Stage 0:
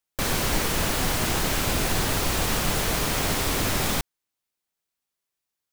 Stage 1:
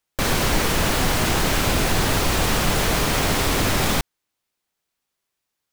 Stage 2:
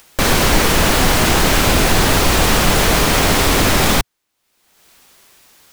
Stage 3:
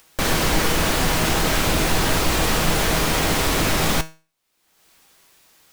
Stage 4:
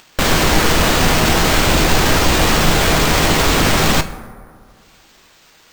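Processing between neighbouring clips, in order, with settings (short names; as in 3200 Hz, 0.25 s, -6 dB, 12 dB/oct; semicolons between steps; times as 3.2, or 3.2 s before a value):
high shelf 6200 Hz -5 dB; in parallel at -0.5 dB: limiter -21 dBFS, peak gain reduction 8 dB; on the sum: gain +1.5 dB
bell 120 Hz -3.5 dB 0.61 oct; upward compressor, threshold -36 dBFS; gain +7 dB
resonator 160 Hz, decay 0.33 s, harmonics all, mix 60%
on a send at -12 dB: reverb RT60 2.1 s, pre-delay 6 ms; on the sum: careless resampling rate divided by 4×, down none, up hold; gain +6 dB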